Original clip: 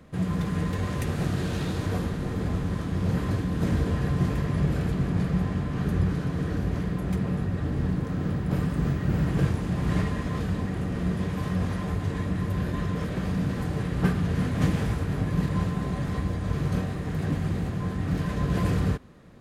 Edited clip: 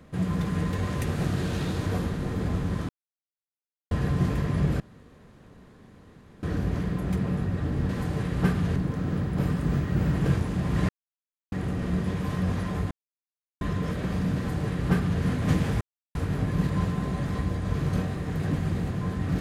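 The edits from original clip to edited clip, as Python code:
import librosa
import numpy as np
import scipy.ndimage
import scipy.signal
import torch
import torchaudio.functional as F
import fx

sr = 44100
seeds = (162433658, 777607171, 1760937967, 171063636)

y = fx.edit(x, sr, fx.silence(start_s=2.89, length_s=1.02),
    fx.room_tone_fill(start_s=4.8, length_s=1.63),
    fx.silence(start_s=10.02, length_s=0.63),
    fx.silence(start_s=12.04, length_s=0.7),
    fx.duplicate(start_s=13.49, length_s=0.87, to_s=7.89),
    fx.insert_silence(at_s=14.94, length_s=0.34), tone=tone)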